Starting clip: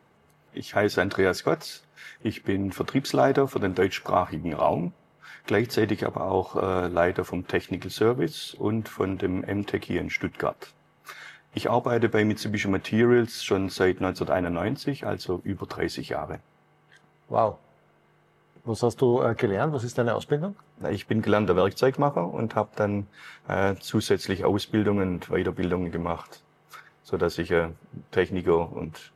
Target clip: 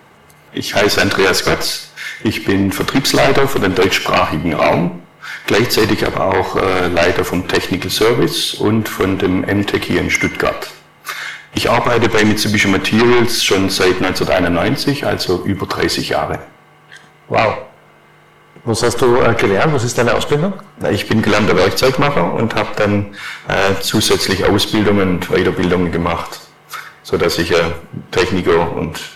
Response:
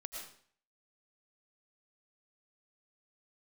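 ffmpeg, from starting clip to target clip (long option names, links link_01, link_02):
-filter_complex "[0:a]tiltshelf=frequency=970:gain=-3,aeval=exprs='0.501*sin(PI/2*4.47*val(0)/0.501)':channel_layout=same,asplit=2[link_01][link_02];[1:a]atrim=start_sample=2205,asetrate=70560,aresample=44100[link_03];[link_02][link_03]afir=irnorm=-1:irlink=0,volume=3dB[link_04];[link_01][link_04]amix=inputs=2:normalize=0,volume=-4dB"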